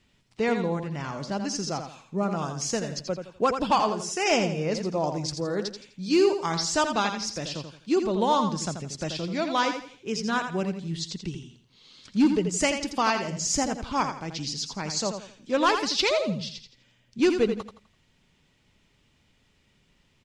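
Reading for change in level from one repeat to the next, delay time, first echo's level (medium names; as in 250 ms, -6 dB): -10.0 dB, 84 ms, -7.5 dB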